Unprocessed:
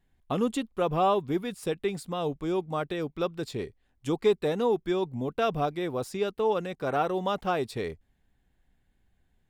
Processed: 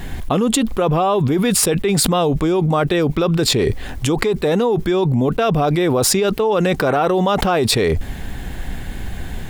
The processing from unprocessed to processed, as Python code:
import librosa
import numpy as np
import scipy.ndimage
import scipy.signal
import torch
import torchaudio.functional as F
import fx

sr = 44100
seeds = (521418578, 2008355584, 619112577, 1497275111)

y = fx.env_flatten(x, sr, amount_pct=100)
y = F.gain(torch.from_numpy(y), 2.5).numpy()